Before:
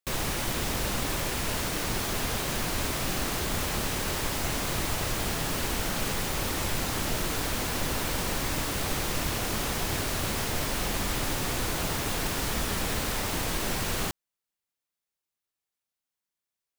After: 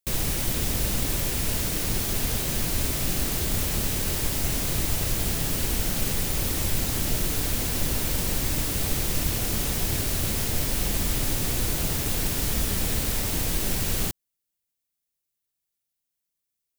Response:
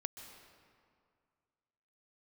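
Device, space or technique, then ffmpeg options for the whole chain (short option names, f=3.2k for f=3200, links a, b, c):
smiley-face EQ: -af "lowshelf=f=180:g=6.5,equalizer=f=1.1k:t=o:w=1.5:g=-6,highshelf=f=8k:g=8.5"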